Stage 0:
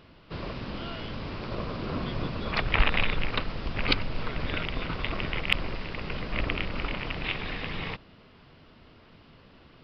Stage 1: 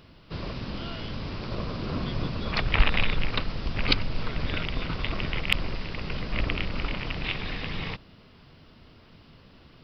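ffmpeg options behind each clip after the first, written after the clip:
-af "bass=f=250:g=4,treble=f=4k:g=8,volume=-1dB"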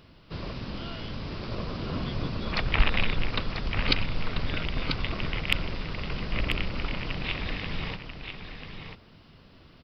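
-af "aecho=1:1:990:0.422,volume=-1.5dB"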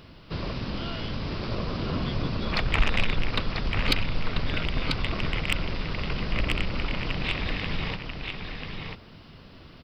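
-filter_complex "[0:a]asplit=2[a][b];[b]acompressor=threshold=-35dB:ratio=6,volume=-2.5dB[c];[a][c]amix=inputs=2:normalize=0,aeval=exprs='(tanh(3.98*val(0)+0.2)-tanh(0.2))/3.98':c=same,volume=1dB"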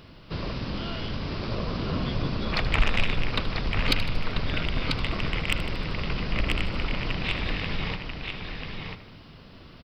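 -af "aecho=1:1:77|154|231|308|385|462:0.211|0.116|0.0639|0.0352|0.0193|0.0106"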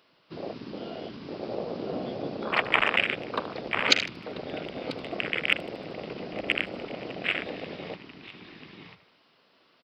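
-af "afwtdn=0.0355,highpass=420,volume=6dB"

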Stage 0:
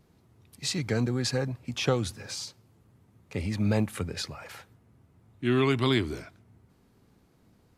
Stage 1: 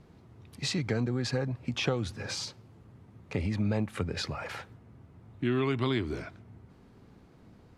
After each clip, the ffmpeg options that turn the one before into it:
-af "aemphasis=mode=reproduction:type=50fm,acompressor=threshold=-37dB:ratio=2.5,volume=6.5dB"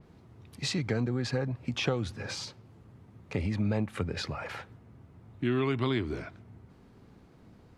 -af "adynamicequalizer=threshold=0.00282:dfrequency=4000:dqfactor=0.7:tfrequency=4000:tqfactor=0.7:attack=5:release=100:ratio=0.375:range=2.5:mode=cutabove:tftype=highshelf"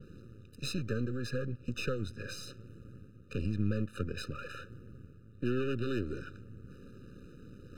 -af "aeval=exprs='if(lt(val(0),0),0.251*val(0),val(0))':c=same,areverse,acompressor=mode=upward:threshold=-39dB:ratio=2.5,areverse,afftfilt=real='re*eq(mod(floor(b*sr/1024/600),2),0)':imag='im*eq(mod(floor(b*sr/1024/600),2),0)':win_size=1024:overlap=0.75"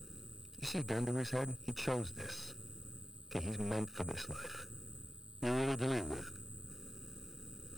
-af "aeval=exprs='(tanh(56.2*val(0)+0.8)-tanh(0.8))/56.2':c=same,aeval=exprs='val(0)+0.002*sin(2*PI*8100*n/s)':c=same,aeval=exprs='sgn(val(0))*max(abs(val(0))-0.00133,0)':c=same,volume=9dB"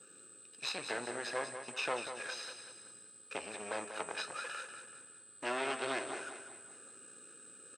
-af "flanger=delay=9.2:depth=9.3:regen=-71:speed=0.38:shape=triangular,highpass=700,lowpass=4.9k,aecho=1:1:191|382|573|764|955:0.355|0.16|0.0718|0.0323|0.0145,volume=10dB"

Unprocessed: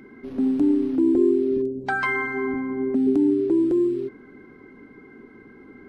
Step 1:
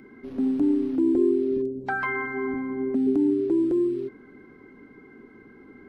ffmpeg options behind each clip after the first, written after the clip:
-filter_complex "[0:a]acrossover=split=2500[a][b];[b]acompressor=threshold=-49dB:ratio=4:attack=1:release=60[c];[a][c]amix=inputs=2:normalize=0,volume=-2.5dB"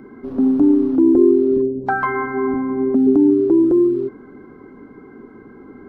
-af "highshelf=f=1.6k:t=q:w=1.5:g=-8.5,volume=8.5dB"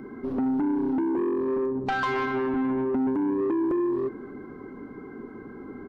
-af "acompressor=threshold=-18dB:ratio=8,asoftclip=type=tanh:threshold=-22dB,aecho=1:1:242:0.112"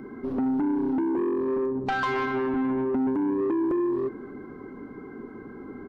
-af anull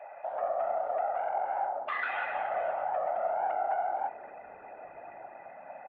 -filter_complex "[0:a]highpass=f=200:t=q:w=0.5412,highpass=f=200:t=q:w=1.307,lowpass=f=2.9k:t=q:w=0.5176,lowpass=f=2.9k:t=q:w=0.7071,lowpass=f=2.9k:t=q:w=1.932,afreqshift=400,asplit=5[a][b][c][d][e];[b]adelay=474,afreqshift=-130,volume=-24dB[f];[c]adelay=948,afreqshift=-260,volume=-29dB[g];[d]adelay=1422,afreqshift=-390,volume=-34.1dB[h];[e]adelay=1896,afreqshift=-520,volume=-39.1dB[i];[a][f][g][h][i]amix=inputs=5:normalize=0,afftfilt=real='hypot(re,im)*cos(2*PI*random(0))':imag='hypot(re,im)*sin(2*PI*random(1))':win_size=512:overlap=0.75"

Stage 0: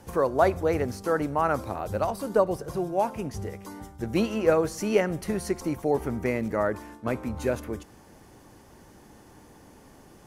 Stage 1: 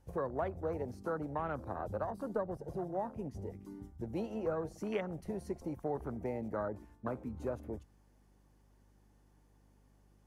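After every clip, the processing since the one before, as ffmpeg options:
-filter_complex "[0:a]afwtdn=0.0282,acrossover=split=230|540[a][b][c];[a]acompressor=threshold=-39dB:ratio=4[d];[b]acompressor=threshold=-40dB:ratio=4[e];[c]acompressor=threshold=-33dB:ratio=4[f];[d][e][f]amix=inputs=3:normalize=0,aeval=exprs='val(0)+0.000891*(sin(2*PI*50*n/s)+sin(2*PI*2*50*n/s)/2+sin(2*PI*3*50*n/s)/3+sin(2*PI*4*50*n/s)/4+sin(2*PI*5*50*n/s)/5)':c=same,volume=-4.5dB"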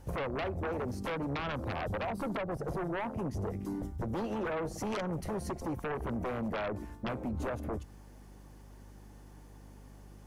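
-af "acompressor=threshold=-42dB:ratio=2.5,aeval=exprs='0.0282*sin(PI/2*3.16*val(0)/0.0282)':c=same"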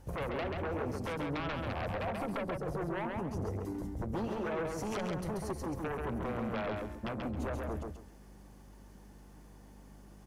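-af "aecho=1:1:135|270|405:0.668|0.154|0.0354,volume=-2.5dB"

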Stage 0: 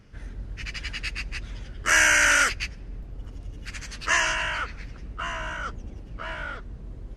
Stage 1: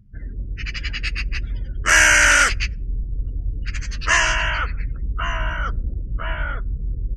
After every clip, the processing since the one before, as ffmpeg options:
-af "afftdn=nr=33:nf=-45,asubboost=boost=2.5:cutoff=140,volume=5.5dB"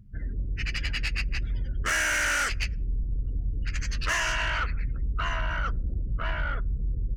-af "acompressor=threshold=-22dB:ratio=3,asoftclip=type=tanh:threshold=-21dB"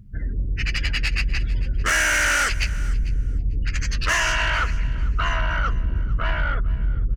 -af "aecho=1:1:447|894:0.119|0.019,volume=6dB"

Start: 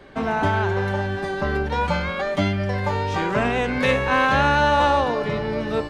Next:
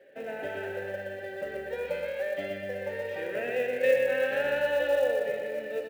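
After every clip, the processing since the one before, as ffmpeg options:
-filter_complex "[0:a]asplit=3[a][b][c];[a]bandpass=f=530:t=q:w=8,volume=0dB[d];[b]bandpass=f=1.84k:t=q:w=8,volume=-6dB[e];[c]bandpass=f=2.48k:t=q:w=8,volume=-9dB[f];[d][e][f]amix=inputs=3:normalize=0,aecho=1:1:122|244|366|488|610|732|854:0.596|0.328|0.18|0.0991|0.0545|0.03|0.0165,acrusher=bits=7:mode=log:mix=0:aa=0.000001"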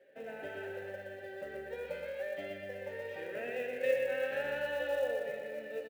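-filter_complex "[0:a]asplit=2[a][b];[b]adelay=13,volume=-11dB[c];[a][c]amix=inputs=2:normalize=0,volume=-7.5dB"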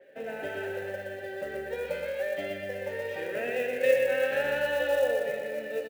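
-af "adynamicequalizer=threshold=0.00158:dfrequency=4400:dqfactor=0.7:tfrequency=4400:tqfactor=0.7:attack=5:release=100:ratio=0.375:range=2:mode=boostabove:tftype=highshelf,volume=7.5dB"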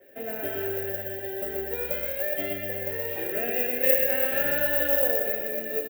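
-filter_complex "[0:a]aecho=1:1:2.9:0.39,acrossover=split=300|1400|4900[a][b][c][d];[a]acontrast=62[e];[e][b][c][d]amix=inputs=4:normalize=0,aexciter=amount=8.1:drive=9.9:freq=12k"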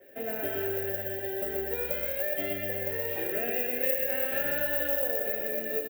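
-af "acompressor=threshold=-27dB:ratio=2.5"

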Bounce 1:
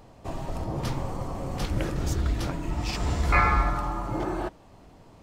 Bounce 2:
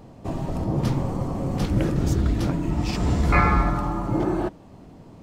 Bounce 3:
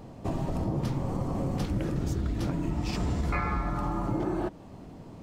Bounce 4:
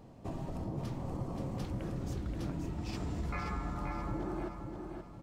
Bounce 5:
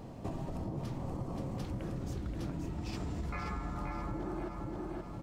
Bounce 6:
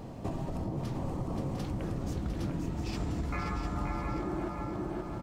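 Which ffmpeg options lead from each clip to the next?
-af "equalizer=f=200:w=0.52:g=10"
-af "acompressor=threshold=-26dB:ratio=6"
-af "aecho=1:1:528|1056|1584|2112:0.501|0.18|0.065|0.0234,volume=-9dB"
-af "acompressor=threshold=-45dB:ratio=3,volume=7.5dB"
-af "aecho=1:1:703:0.422,volume=3.5dB"

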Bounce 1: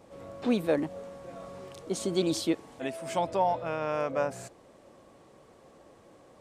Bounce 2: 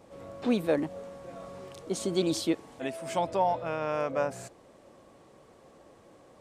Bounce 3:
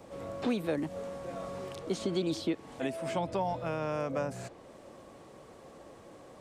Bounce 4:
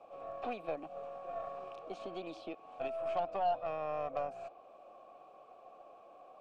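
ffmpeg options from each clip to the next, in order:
-af anull
-filter_complex "[0:a]acrossover=split=290|1100|4800[a][b][c][d];[a]acompressor=threshold=-38dB:ratio=4[e];[b]acompressor=threshold=-39dB:ratio=4[f];[c]acompressor=threshold=-47dB:ratio=4[g];[d]acompressor=threshold=-60dB:ratio=4[h];[e][f][g][h]amix=inputs=4:normalize=0,volume=4dB"
-filter_complex "[0:a]asplit=3[a][b][c];[a]bandpass=f=730:t=q:w=8,volume=0dB[d];[b]bandpass=f=1.09k:t=q:w=8,volume=-6dB[e];[c]bandpass=f=2.44k:t=q:w=8,volume=-9dB[f];[d][e][f]amix=inputs=3:normalize=0,aeval=exprs='0.0355*(cos(1*acos(clip(val(0)/0.0355,-1,1)))-cos(1*PI/2))+0.00178*(cos(6*acos(clip(val(0)/0.0355,-1,1)))-cos(6*PI/2))':c=same,volume=5.5dB"

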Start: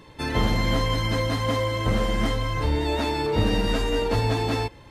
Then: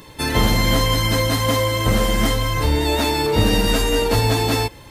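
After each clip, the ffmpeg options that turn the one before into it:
-af "aemphasis=mode=production:type=50fm,volume=5.5dB"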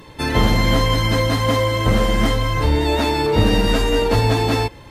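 -af "lowpass=f=3.3k:p=1,volume=1.5dB"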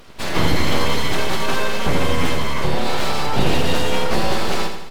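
-af "aeval=exprs='abs(val(0))':c=same,aecho=1:1:83|166|249|332|415|498:0.422|0.223|0.118|0.0628|0.0333|0.0176,volume=-1dB"

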